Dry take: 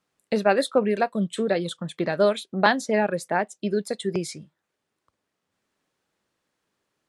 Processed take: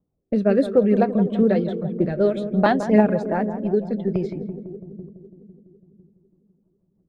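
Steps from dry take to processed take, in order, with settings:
low-pass that shuts in the quiet parts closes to 700 Hz, open at −19 dBFS
rotating-speaker cabinet horn 0.6 Hz, later 6.3 Hz, at 0:04.28
low-pass that shuts in the quiet parts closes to 1,200 Hz, open at −21.5 dBFS
spectral tilt −3.5 dB per octave
on a send: feedback echo with a low-pass in the loop 167 ms, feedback 77%, low-pass 960 Hz, level −9 dB
on the sum: phase shifter 1 Hz, delay 4.9 ms, feedback 38%

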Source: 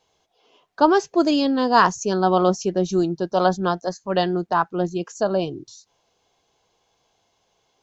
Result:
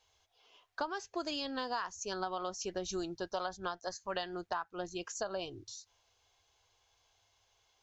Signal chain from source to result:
drawn EQ curve 100 Hz 0 dB, 150 Hz −21 dB, 1,600 Hz −3 dB
downward compressor 16 to 1, threshold −33 dBFS, peak gain reduction 18 dB

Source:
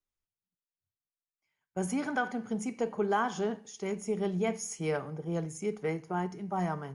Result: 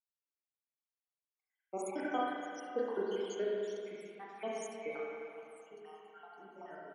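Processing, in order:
time-frequency cells dropped at random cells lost 76%
source passing by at 0:02.78, 8 m/s, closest 9.5 metres
high-pass filter 280 Hz 24 dB per octave
single-tap delay 72 ms −22 dB
spring reverb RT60 2.4 s, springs 31/35/43 ms, chirp 60 ms, DRR −5 dB
level −2.5 dB

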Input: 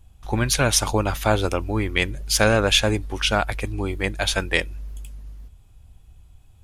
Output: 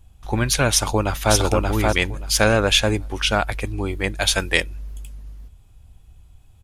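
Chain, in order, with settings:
0:00.69–0:01.34: delay throw 580 ms, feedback 15%, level −2 dB
0:04.20–0:04.63: high-shelf EQ 4,000 Hz +6.5 dB
level +1 dB

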